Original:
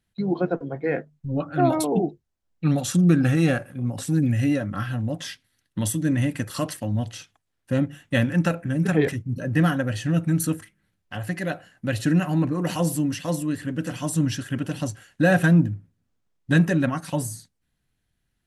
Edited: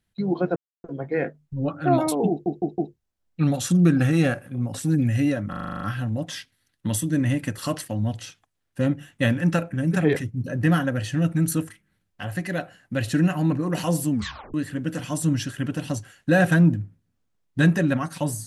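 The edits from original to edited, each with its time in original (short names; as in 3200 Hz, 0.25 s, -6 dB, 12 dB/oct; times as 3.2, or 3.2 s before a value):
0.56 insert silence 0.28 s
2.02 stutter 0.16 s, 4 plays
4.73 stutter 0.04 s, 9 plays
13.03 tape stop 0.43 s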